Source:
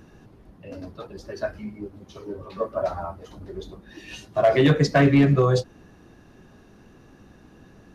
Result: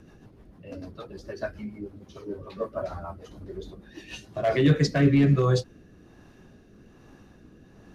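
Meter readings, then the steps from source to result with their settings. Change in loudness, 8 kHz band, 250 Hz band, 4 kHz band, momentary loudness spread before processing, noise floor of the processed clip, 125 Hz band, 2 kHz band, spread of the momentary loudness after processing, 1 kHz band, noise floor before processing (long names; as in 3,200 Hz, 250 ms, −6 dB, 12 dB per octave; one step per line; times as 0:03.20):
−3.5 dB, can't be measured, −2.5 dB, −3.0 dB, 22 LU, −54 dBFS, −1.5 dB, −5.5 dB, 21 LU, −7.0 dB, −52 dBFS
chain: dynamic equaliser 710 Hz, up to −5 dB, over −32 dBFS, Q 1
rotating-speaker cabinet horn 6.7 Hz, later 1.2 Hz, at 0:04.08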